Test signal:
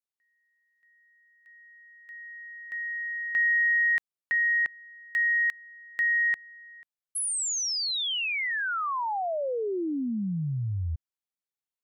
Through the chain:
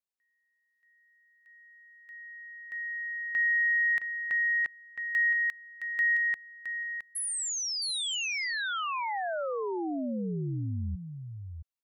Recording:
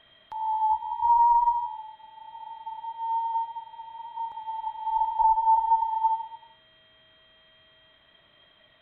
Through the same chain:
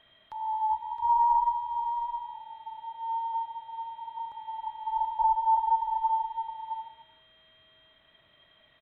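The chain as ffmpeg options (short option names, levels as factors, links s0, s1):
-af "aecho=1:1:666:0.398,volume=0.668"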